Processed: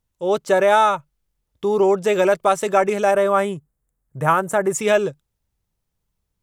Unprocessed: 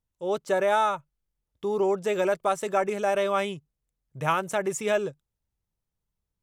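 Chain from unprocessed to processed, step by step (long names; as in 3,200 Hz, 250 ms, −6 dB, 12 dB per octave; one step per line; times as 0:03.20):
0:03.11–0:04.75: flat-topped bell 3,700 Hz −10 dB
level +8 dB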